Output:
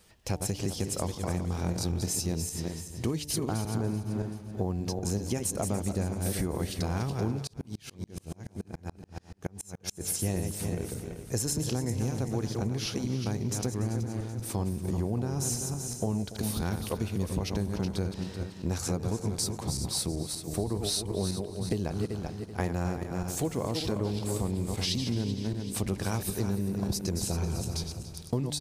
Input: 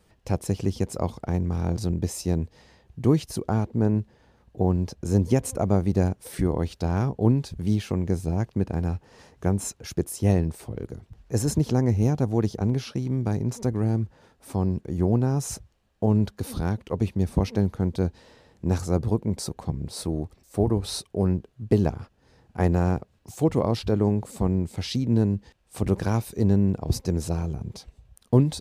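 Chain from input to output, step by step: backward echo that repeats 192 ms, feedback 52%, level -7 dB; treble shelf 2 kHz +11 dB; de-hum 147.8 Hz, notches 6; compression, threshold -25 dBFS, peak gain reduction 12 dB; feedback delay 288 ms, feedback 27%, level -15.5 dB; 7.47–10.01 s: sawtooth tremolo in dB swelling 7 Hz, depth 36 dB; trim -2 dB

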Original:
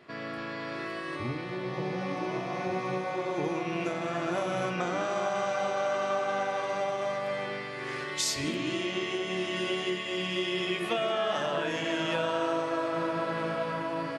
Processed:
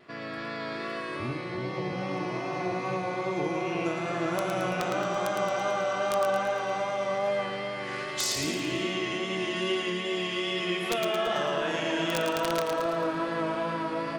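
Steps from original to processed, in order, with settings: integer overflow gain 18 dB; two-band feedback delay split 990 Hz, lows 348 ms, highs 111 ms, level -5 dB; vibrato 2.5 Hz 26 cents

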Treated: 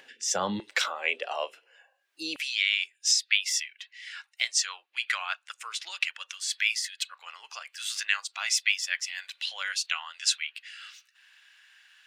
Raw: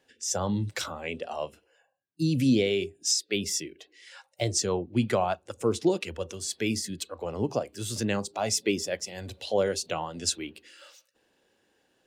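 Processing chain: high-pass 140 Hz 24 dB/octave, from 0.60 s 410 Hz, from 2.36 s 1.3 kHz; peaking EQ 2.2 kHz +14 dB 2.6 oct; upward compressor, threshold -44 dBFS; trim -4 dB

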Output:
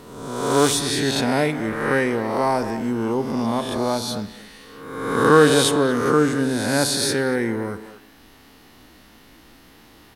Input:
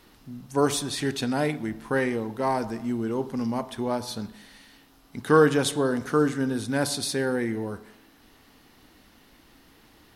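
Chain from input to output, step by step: reverse spectral sustain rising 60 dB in 1.13 s; speakerphone echo 230 ms, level -13 dB; trim +3.5 dB

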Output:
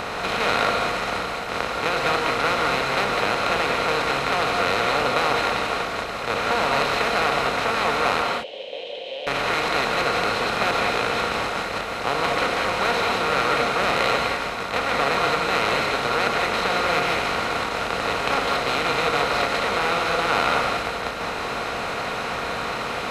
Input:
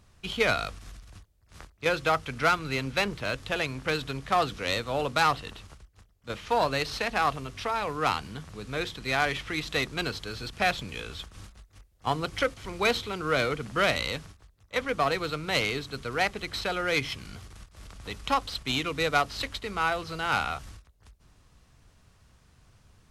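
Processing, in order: spectral levelling over time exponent 0.2; 8.22–9.27 s: two resonant band-passes 1.3 kHz, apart 2.5 oct; gated-style reverb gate 230 ms rising, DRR 1 dB; trim -7.5 dB

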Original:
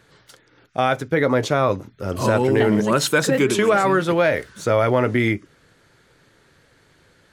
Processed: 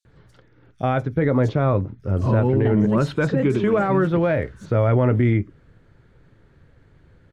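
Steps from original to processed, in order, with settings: RIAA curve playback; peak limiter -5.5 dBFS, peak gain reduction 4.5 dB; 1.49–3.84 s: treble shelf 9.4 kHz -11 dB; bands offset in time highs, lows 50 ms, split 5 kHz; trim -4.5 dB

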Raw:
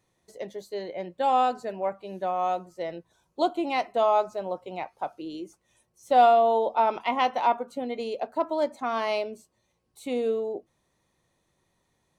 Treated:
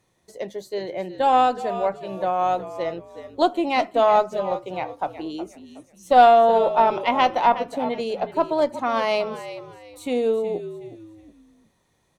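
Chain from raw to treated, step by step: frequency-shifting echo 368 ms, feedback 32%, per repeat -61 Hz, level -12.5 dB; Chebyshev shaper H 2 -18 dB, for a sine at -9 dBFS; trim +5 dB

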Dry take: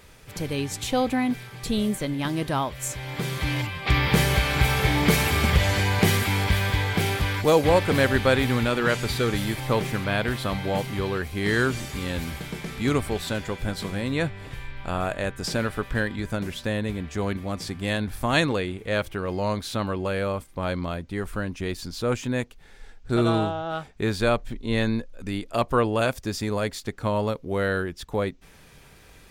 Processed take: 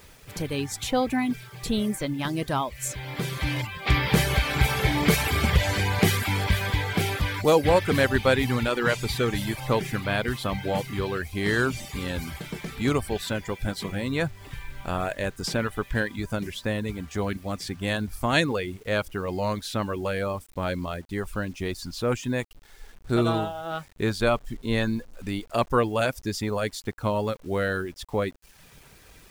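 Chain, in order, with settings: reverb removal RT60 0.63 s; bit crusher 9-bit

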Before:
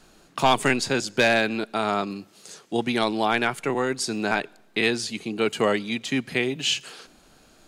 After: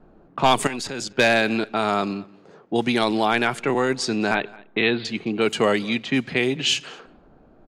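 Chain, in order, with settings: 4.34–5.05 s: steep low-pass 4.1 kHz 96 dB/octave; level-controlled noise filter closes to 750 Hz, open at -19.5 dBFS; in parallel at -2 dB: peak limiter -20 dBFS, peak gain reduction 11.5 dB; 0.67–1.19 s: on the sum: level held to a coarse grid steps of 15 dB; echo from a far wall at 37 m, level -23 dB

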